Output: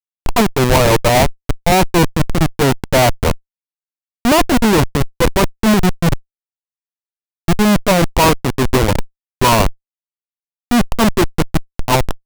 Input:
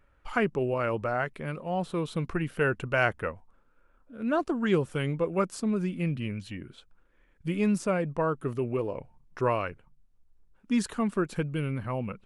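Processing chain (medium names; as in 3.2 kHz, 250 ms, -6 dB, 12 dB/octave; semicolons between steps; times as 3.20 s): FFT filter 490 Hz 0 dB, 970 Hz +14 dB, 1.8 kHz -20 dB; Schmitt trigger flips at -26.5 dBFS; loudness maximiser +33.5 dB; trim -7.5 dB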